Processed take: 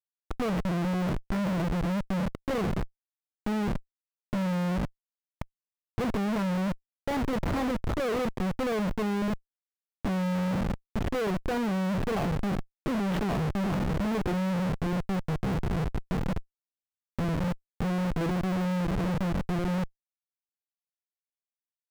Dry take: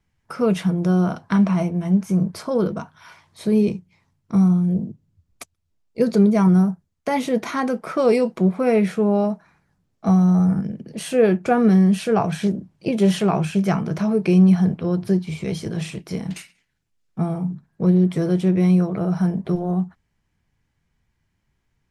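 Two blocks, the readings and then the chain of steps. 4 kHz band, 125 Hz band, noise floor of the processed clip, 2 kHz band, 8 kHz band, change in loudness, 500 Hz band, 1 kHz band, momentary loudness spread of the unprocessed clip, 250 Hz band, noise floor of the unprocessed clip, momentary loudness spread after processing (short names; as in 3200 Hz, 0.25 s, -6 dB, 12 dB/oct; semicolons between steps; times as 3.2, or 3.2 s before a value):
-4.5 dB, -9.5 dB, under -85 dBFS, -3.5 dB, -8.5 dB, -10.0 dB, -10.5 dB, -6.0 dB, 14 LU, -11.0 dB, -72 dBFS, 6 LU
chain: self-modulated delay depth 0.055 ms; Schmitt trigger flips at -25 dBFS; high shelf 3800 Hz -12 dB; gain -7 dB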